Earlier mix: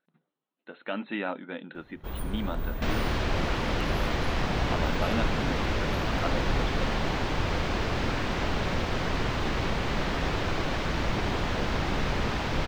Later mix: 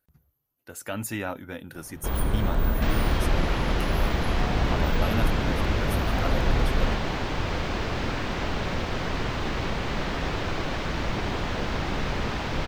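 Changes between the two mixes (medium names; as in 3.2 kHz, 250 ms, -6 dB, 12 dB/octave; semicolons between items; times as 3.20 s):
speech: remove brick-wall FIR band-pass 160–4200 Hz; first sound +8.5 dB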